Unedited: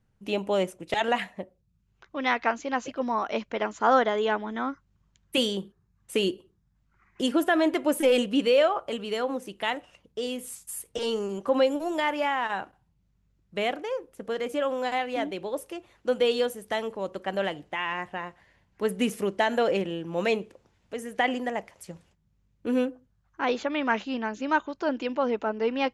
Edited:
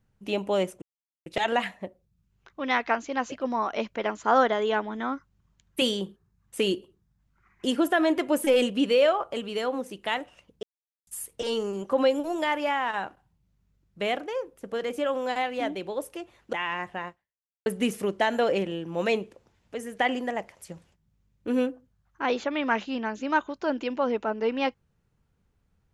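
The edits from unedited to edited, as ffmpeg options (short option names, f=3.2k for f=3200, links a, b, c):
-filter_complex "[0:a]asplit=6[a][b][c][d][e][f];[a]atrim=end=0.82,asetpts=PTS-STARTPTS,afade=t=out:st=0.816:d=0.004:c=hsin,apad=pad_dur=0.44[g];[b]atrim=start=0.82:end=10.19,asetpts=PTS-STARTPTS,afade=t=in:d=0.004:c=hsin,afade=t=out:st=9.366:d=0.004:c=hsin[h];[c]atrim=start=10.19:end=10.63,asetpts=PTS-STARTPTS,volume=0[i];[d]atrim=start=10.63:end=16.092,asetpts=PTS-STARTPTS,afade=t=in:d=0.004:c=hsin[j];[e]atrim=start=17.718:end=18.85,asetpts=PTS-STARTPTS,afade=t=out:st=0.552:d=0.58:c=exp[k];[f]atrim=start=18.85,asetpts=PTS-STARTPTS,afade=t=in:d=0.004:c=hsin[l];[g][h][i][j]concat=n=4:v=0:a=1[m];[k][l]concat=n=2:v=0:a=1[n];[m][n]acrossfade=d=0.004:c1=hsin:c2=hsin"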